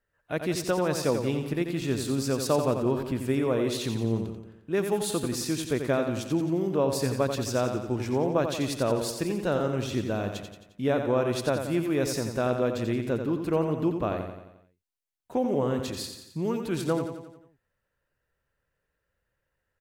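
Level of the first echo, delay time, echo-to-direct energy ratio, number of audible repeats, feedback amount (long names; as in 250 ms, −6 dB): −7.0 dB, 88 ms, −5.5 dB, 6, 53%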